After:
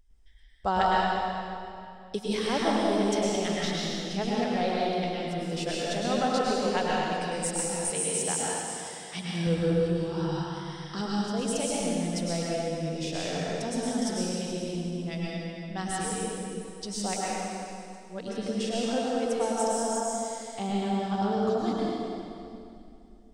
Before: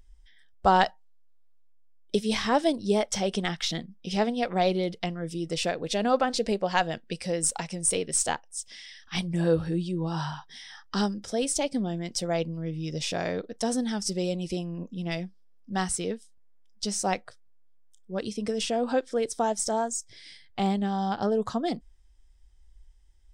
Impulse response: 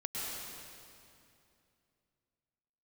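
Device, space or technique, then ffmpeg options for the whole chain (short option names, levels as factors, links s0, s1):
stairwell: -filter_complex "[1:a]atrim=start_sample=2205[s0];[0:a][s0]afir=irnorm=-1:irlink=0,asettb=1/sr,asplit=3[s1][s2][s3];[s1]atrim=end=7.904[s4];[s2]atrim=start=7.9:end=9.47,asetpts=PTS-STARTPTS,afade=t=in:d=0.004:c=qsin,afade=t=out:st=1.566:d=0.004:c=qsin,highpass=92[s5];[s3]atrim=start=9.466[s6];[s4][s5]acrossfade=d=0.004:c1=hsin:c2=qsin[s7];[s7][s6]acrossfade=d=0.004:c1=qsin:c2=hsin,volume=0.631"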